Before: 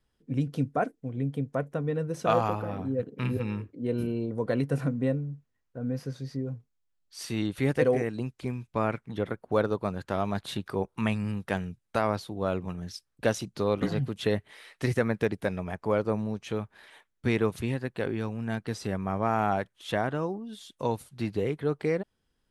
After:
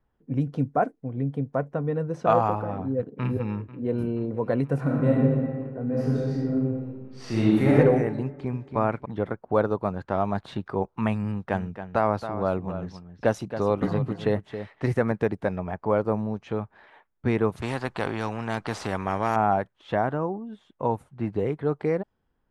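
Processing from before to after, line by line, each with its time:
3.20–4.02 s: echo throw 480 ms, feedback 75%, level -17.5 dB
4.81–5.31 s: reverb throw, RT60 2 s, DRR -4.5 dB
5.85–7.71 s: reverb throw, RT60 1.4 s, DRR -7 dB
8.24–8.77 s: echo throw 280 ms, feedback 10%, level -7.5 dB
11.24–15.12 s: delay 273 ms -10.5 dB
17.62–19.36 s: spectrum-flattening compressor 2:1
20.14–21.36 s: peaking EQ 4.6 kHz -10.5 dB 0.98 oct
whole clip: level-controlled noise filter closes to 2.9 kHz, open at -22 dBFS; FFT filter 490 Hz 0 dB, 830 Hz +4 dB, 3.4 kHz -9 dB; trim +2.5 dB

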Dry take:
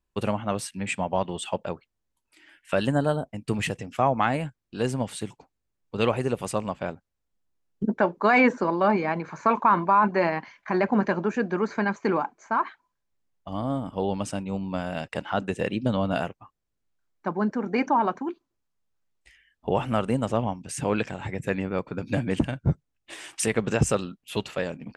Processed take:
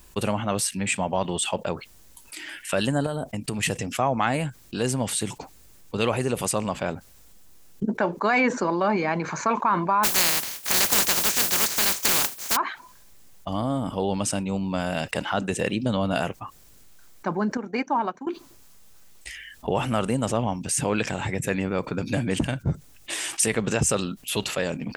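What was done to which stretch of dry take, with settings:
3.06–3.63 s: compression, threshold -30 dBFS
10.03–12.55 s: spectral contrast reduction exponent 0.19
17.57–18.27 s: upward expansion 2.5:1, over -43 dBFS
whole clip: treble shelf 4.5 kHz +11.5 dB; level flattener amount 50%; trim -4.5 dB

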